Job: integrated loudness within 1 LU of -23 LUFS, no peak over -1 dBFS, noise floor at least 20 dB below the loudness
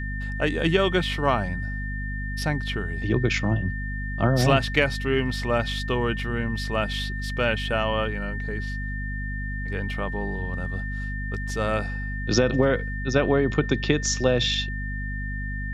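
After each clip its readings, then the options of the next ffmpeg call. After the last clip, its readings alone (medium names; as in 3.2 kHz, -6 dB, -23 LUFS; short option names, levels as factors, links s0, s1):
hum 50 Hz; highest harmonic 250 Hz; hum level -28 dBFS; steady tone 1.8 kHz; tone level -34 dBFS; loudness -25.5 LUFS; peak level -5.5 dBFS; loudness target -23.0 LUFS
-> -af "bandreject=f=50:t=h:w=4,bandreject=f=100:t=h:w=4,bandreject=f=150:t=h:w=4,bandreject=f=200:t=h:w=4,bandreject=f=250:t=h:w=4"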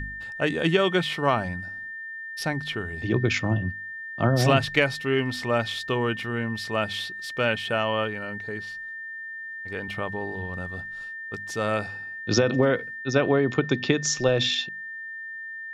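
hum not found; steady tone 1.8 kHz; tone level -34 dBFS
-> -af "bandreject=f=1800:w=30"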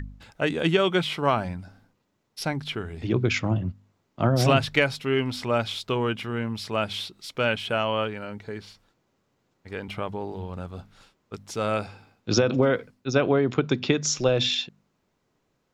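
steady tone not found; loudness -25.5 LUFS; peak level -6.5 dBFS; loudness target -23.0 LUFS
-> -af "volume=1.33"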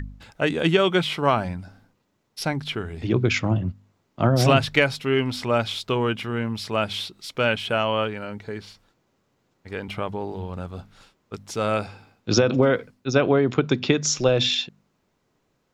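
loudness -23.0 LUFS; peak level -4.0 dBFS; noise floor -71 dBFS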